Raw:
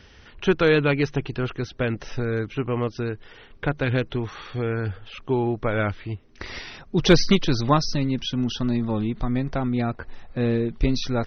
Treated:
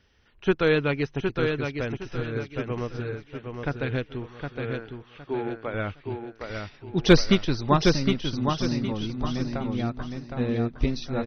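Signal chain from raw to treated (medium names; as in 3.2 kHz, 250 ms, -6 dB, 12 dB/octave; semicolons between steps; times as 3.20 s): 4.26–5.74 s: band-pass 250–4500 Hz; feedback delay 763 ms, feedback 41%, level -3.5 dB; upward expansion 1.5:1, over -39 dBFS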